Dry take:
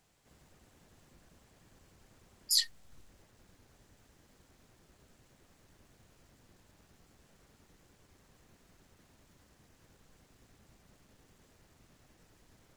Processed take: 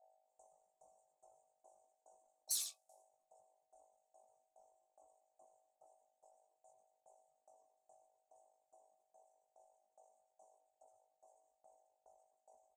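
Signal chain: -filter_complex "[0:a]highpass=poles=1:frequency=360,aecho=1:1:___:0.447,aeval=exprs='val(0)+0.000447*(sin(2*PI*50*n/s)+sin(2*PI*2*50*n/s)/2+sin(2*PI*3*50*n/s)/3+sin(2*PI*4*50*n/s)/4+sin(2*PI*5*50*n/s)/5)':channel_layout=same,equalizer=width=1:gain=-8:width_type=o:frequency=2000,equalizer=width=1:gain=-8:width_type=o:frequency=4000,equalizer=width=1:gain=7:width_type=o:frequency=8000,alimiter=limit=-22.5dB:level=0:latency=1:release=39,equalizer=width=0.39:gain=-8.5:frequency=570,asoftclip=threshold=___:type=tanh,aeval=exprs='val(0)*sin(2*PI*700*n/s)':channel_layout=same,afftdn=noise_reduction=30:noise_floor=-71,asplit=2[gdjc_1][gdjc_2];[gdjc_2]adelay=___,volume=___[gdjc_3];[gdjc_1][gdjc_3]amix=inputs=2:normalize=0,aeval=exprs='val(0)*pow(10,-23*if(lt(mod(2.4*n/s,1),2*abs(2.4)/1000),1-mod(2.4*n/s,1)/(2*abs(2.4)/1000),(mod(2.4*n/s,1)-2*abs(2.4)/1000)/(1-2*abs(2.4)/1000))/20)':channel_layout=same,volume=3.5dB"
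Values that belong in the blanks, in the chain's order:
87, -28dB, 20, -4dB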